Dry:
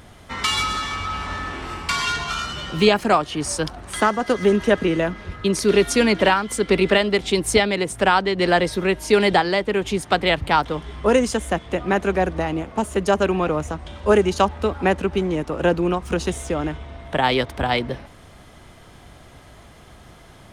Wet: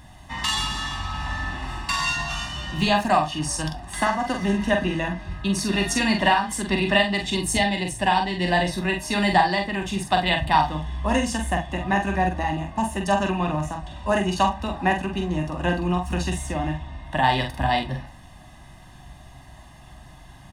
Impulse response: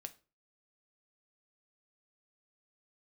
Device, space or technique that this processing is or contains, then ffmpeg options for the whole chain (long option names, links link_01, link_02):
microphone above a desk: -filter_complex "[0:a]bandreject=frequency=2200:width=20,asettb=1/sr,asplit=3[link_01][link_02][link_03];[link_01]atrim=end=7.504[link_04];[link_02]atrim=start=7.5:end=8.67,asetpts=PTS-STARTPTS,afade=type=in:duration=0.004:curve=qsin,afade=type=out:start_time=1.166:duration=0.004:curve=qsin,equalizer=frequency=1300:width=3.4:gain=-9.5[link_05];[link_03]atrim=start=8.666[link_06];[link_04][link_05]acrossfade=duration=0.004:curve1=hsin:curve2=qsin[link_07];[link_07][link_06]acrossfade=duration=0.004:curve1=qsin:curve2=hsin,aecho=1:1:1.1:0.84[link_08];[1:a]atrim=start_sample=2205[link_09];[link_08][link_09]afir=irnorm=-1:irlink=0,asplit=2[link_10][link_11];[link_11]adelay=45,volume=-5dB[link_12];[link_10][link_12]amix=inputs=2:normalize=0"